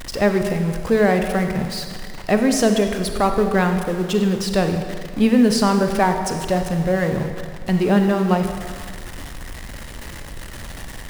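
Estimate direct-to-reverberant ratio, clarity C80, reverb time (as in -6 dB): 5.5 dB, 7.5 dB, 1.9 s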